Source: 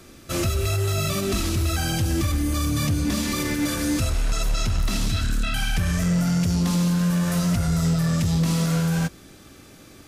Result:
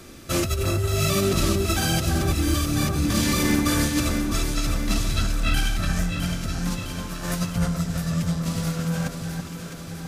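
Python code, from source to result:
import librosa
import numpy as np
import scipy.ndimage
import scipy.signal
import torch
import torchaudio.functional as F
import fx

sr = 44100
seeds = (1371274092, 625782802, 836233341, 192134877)

p1 = fx.over_compress(x, sr, threshold_db=-24.0, ratio=-0.5)
y = p1 + fx.echo_alternate(p1, sr, ms=329, hz=1600.0, feedback_pct=76, wet_db=-4, dry=0)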